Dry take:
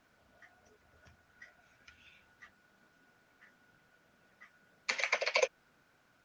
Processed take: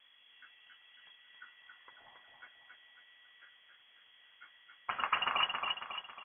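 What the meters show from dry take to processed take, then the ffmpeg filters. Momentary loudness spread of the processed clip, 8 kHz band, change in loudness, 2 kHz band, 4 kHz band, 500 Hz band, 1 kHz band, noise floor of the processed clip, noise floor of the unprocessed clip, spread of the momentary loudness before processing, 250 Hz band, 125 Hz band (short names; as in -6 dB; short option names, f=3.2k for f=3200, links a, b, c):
11 LU, under -30 dB, -1.0 dB, -2.5 dB, +6.0 dB, -14.0 dB, +8.0 dB, -64 dBFS, -70 dBFS, 7 LU, +2.5 dB, +2.0 dB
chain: -af "alimiter=limit=-17dB:level=0:latency=1:release=147,aeval=exprs='val(0)+0.000501*(sin(2*PI*50*n/s)+sin(2*PI*2*50*n/s)/2+sin(2*PI*3*50*n/s)/3+sin(2*PI*4*50*n/s)/4+sin(2*PI*5*50*n/s)/5)':c=same,aecho=1:1:274|548|822|1096|1370|1644:0.631|0.297|0.139|0.0655|0.0308|0.0145,lowpass=f=2.9k:t=q:w=0.5098,lowpass=f=2.9k:t=q:w=0.6013,lowpass=f=2.9k:t=q:w=0.9,lowpass=f=2.9k:t=q:w=2.563,afreqshift=-3400,volume=1dB"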